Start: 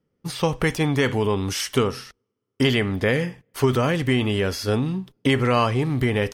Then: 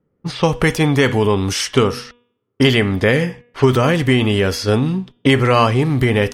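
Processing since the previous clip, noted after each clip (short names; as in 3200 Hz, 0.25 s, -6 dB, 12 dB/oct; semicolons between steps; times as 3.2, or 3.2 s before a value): low-pass opened by the level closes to 1600 Hz, open at -20.5 dBFS; de-hum 241.4 Hz, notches 15; gain +6.5 dB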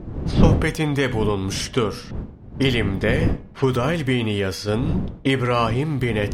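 wind noise 190 Hz -19 dBFS; gain -6.5 dB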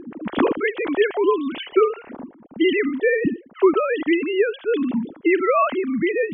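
sine-wave speech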